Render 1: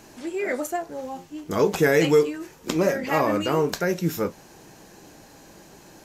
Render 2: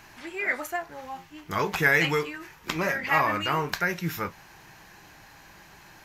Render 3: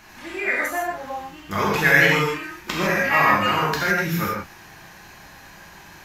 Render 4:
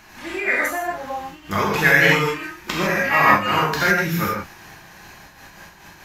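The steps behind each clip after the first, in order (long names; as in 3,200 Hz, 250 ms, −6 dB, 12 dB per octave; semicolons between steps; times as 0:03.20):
octave-band graphic EQ 250/500/1,000/2,000/8,000 Hz −9/−10/+3/+6/−8 dB
reverb whose tail is shaped and stops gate 180 ms flat, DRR −4 dB; level +1 dB
amplitude modulation by smooth noise, depth 65%; level +4.5 dB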